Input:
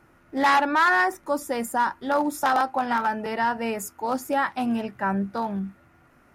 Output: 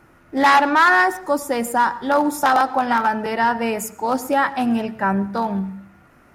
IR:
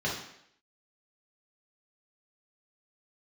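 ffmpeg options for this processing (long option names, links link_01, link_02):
-filter_complex "[0:a]asplit=2[link_01][link_02];[1:a]atrim=start_sample=2205,asetrate=52920,aresample=44100,adelay=93[link_03];[link_02][link_03]afir=irnorm=-1:irlink=0,volume=-24.5dB[link_04];[link_01][link_04]amix=inputs=2:normalize=0,volume=5.5dB"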